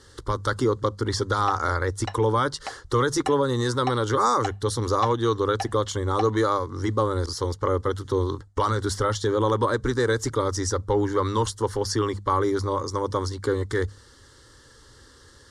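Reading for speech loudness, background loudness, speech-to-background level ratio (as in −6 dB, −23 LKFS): −25.0 LKFS, −37.5 LKFS, 12.5 dB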